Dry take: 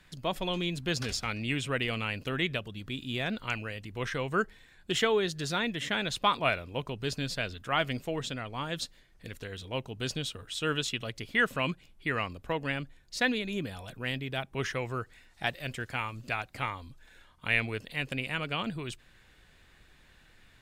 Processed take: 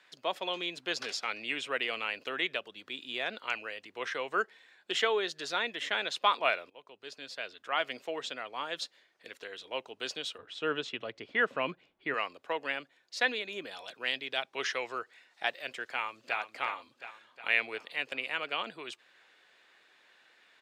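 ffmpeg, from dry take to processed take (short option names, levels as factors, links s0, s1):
-filter_complex "[0:a]asettb=1/sr,asplit=3[s0][s1][s2];[s0]atrim=end=10.384[s3];[s1]atrim=start=10.38:end=12.14,asetpts=PTS-STARTPTS,afade=t=in:d=0.004:c=qsin,afade=t=out:st=1.756:d=0.004:c=qsin,aemphasis=mode=reproduction:type=riaa[s4];[s2]atrim=start=12.136[s5];[s3][s4]acrossfade=d=0.004:c1=hsin:c2=qsin[s6];[s6][s5]acrossfade=d=0.004:c1=qsin:c2=hsin,asettb=1/sr,asplit=3[s7][s8][s9];[s7]atrim=end=13.714[s10];[s8]atrim=start=13.71:end=14.99,asetpts=PTS-STARTPTS,afade=t=in:d=0.004:c=qsin,afade=t=out:st=1.276:d=0.004:c=qsin,equalizer=f=4600:t=o:w=1.5:g=7[s11];[s9]atrim=start=14.986[s12];[s10][s11]acrossfade=d=0.004:c1=hsin:c2=qsin[s13];[s13][s12]acrossfade=d=0.004:c1=qsin:c2=hsin,asplit=2[s14][s15];[s15]afade=t=in:st=15.91:d=0.01,afade=t=out:st=16.38:d=0.01,aecho=0:1:360|720|1080|1440|1800|2160|2520|2880:0.375837|0.225502|0.135301|0.0811809|0.0487085|0.0292251|0.0175351|0.010521[s16];[s14][s16]amix=inputs=2:normalize=0,asplit=2[s17][s18];[s17]atrim=end=6.7,asetpts=PTS-STARTPTS,afade=t=out:st=6.696:d=0.004:c=hsin:silence=0.112202[s19];[s18]atrim=start=6.7,asetpts=PTS-STARTPTS,afade=t=in:d=1.41:silence=0.112202[s20];[s19][s20]concat=n=2:v=0:a=1,highpass=170,acrossover=split=360 6400:gain=0.0708 1 0.251[s21][s22][s23];[s21][s22][s23]amix=inputs=3:normalize=0"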